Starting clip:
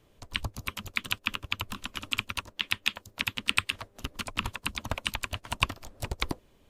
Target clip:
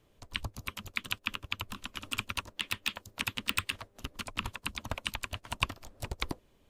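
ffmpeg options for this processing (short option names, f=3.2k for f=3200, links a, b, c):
-filter_complex "[0:a]asettb=1/sr,asplit=3[a][b][c];[a]atrim=end=2.054[d];[b]atrim=start=2.05:end=3.77,asetpts=PTS-STARTPTS,afade=t=in:d=0.004:c=qsin,afade=t=out:st=1.716:d=0.004:c=qsin,aeval=exprs='0.562*(cos(1*acos(clip(val(0)/0.562,-1,1)))-cos(1*PI/2))+0.178*(cos(3*acos(clip(val(0)/0.562,-1,1)))-cos(3*PI/2))+0.158*(cos(5*acos(clip(val(0)/0.562,-1,1)))-cos(5*PI/2))':c=same[e];[c]atrim=start=3.766[f];[d][e]acrossfade=d=0.004:c1=hsin:c2=qsin[g];[g][f]acrossfade=d=0.004:c1=qsin:c2=hsin,volume=-4dB"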